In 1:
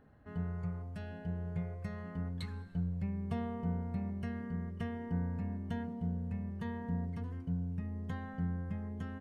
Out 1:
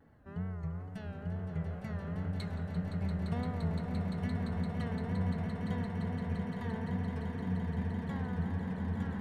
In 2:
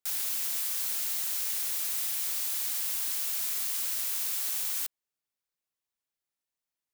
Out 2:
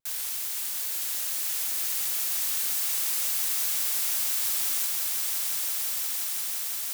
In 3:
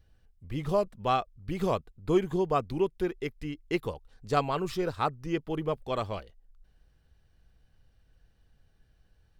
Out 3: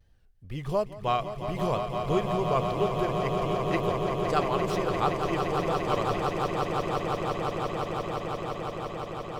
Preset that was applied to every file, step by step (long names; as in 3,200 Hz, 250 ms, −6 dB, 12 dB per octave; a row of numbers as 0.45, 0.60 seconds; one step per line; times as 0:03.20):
dynamic equaliser 290 Hz, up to −6 dB, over −48 dBFS, Q 2.3
tape wow and flutter 110 cents
echo that builds up and dies away 172 ms, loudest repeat 8, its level −8 dB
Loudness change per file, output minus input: +2.5, +3.0, +2.0 LU